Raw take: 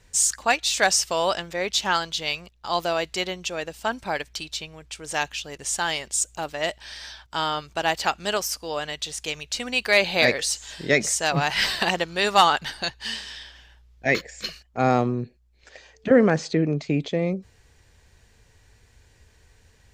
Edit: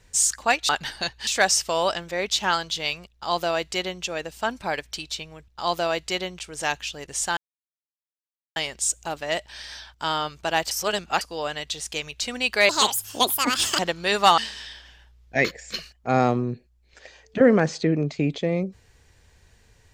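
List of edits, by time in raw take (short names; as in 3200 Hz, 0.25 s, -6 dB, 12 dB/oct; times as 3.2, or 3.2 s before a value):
2.54–3.45 copy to 4.9
5.88 insert silence 1.19 s
8.03–8.53 reverse
10.01–11.91 speed 173%
12.5–13.08 move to 0.69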